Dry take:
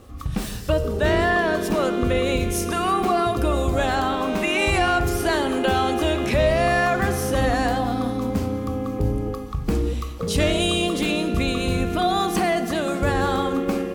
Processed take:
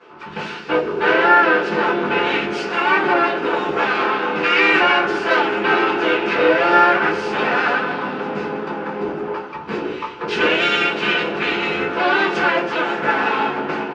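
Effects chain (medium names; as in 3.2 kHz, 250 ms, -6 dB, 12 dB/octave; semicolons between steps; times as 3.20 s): comb filter that takes the minimum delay 4.6 ms; dynamic bell 1 kHz, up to -4 dB, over -34 dBFS, Q 1.5; harmony voices -12 st -7 dB, -4 st -2 dB; cabinet simulation 350–4500 Hz, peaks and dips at 420 Hz +5 dB, 610 Hz -9 dB, 930 Hz +6 dB, 1.5 kHz +10 dB, 2.6 kHz +7 dB, 3.9 kHz -4 dB; reverberation, pre-delay 6 ms, DRR -3.5 dB; trim -2 dB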